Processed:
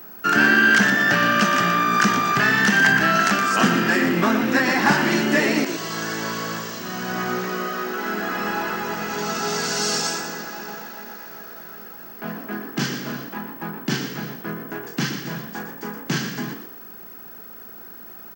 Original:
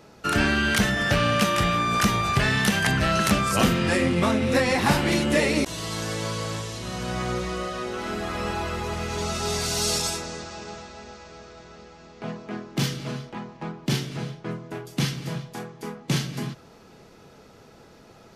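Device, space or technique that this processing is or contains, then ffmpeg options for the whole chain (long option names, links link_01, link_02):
old television with a line whistle: -filter_complex "[0:a]highpass=frequency=170:width=0.5412,highpass=frequency=170:width=1.3066,equalizer=frequency=530:width_type=q:width=4:gain=-9,equalizer=frequency=1600:width_type=q:width=4:gain=8,equalizer=frequency=2300:width_type=q:width=4:gain=-4,equalizer=frequency=3700:width_type=q:width=4:gain=-7,lowpass=frequency=7100:width=0.5412,lowpass=frequency=7100:width=1.3066,aeval=exprs='val(0)+0.00794*sin(2*PI*15734*n/s)':channel_layout=same,asettb=1/sr,asplit=3[link_01][link_02][link_03];[link_01]atrim=end=3.184[link_04];[link_02]atrim=start=3.18:end=3.62,asetpts=PTS-STARTPTS,afade=type=in:duration=0.004:curve=qsin,afade=type=out:start_time=0.436:duration=0.004:curve=qsin,lowshelf=frequency=200:gain=-9.5[link_05];[link_03]atrim=start=3.616[link_06];[link_04][link_05]acrossfade=duration=0.004:curve1=hsin:curve2=qsin[link_07];[link_07][link_06]acrossfade=duration=0.004:curve1=qsin:curve2=hsin,asplit=5[link_08][link_09][link_10][link_11][link_12];[link_09]adelay=118,afreqshift=56,volume=-8.5dB[link_13];[link_10]adelay=236,afreqshift=112,volume=-19dB[link_14];[link_11]adelay=354,afreqshift=168,volume=-29.4dB[link_15];[link_12]adelay=472,afreqshift=224,volume=-39.9dB[link_16];[link_08][link_13][link_14][link_15][link_16]amix=inputs=5:normalize=0,volume=3.5dB"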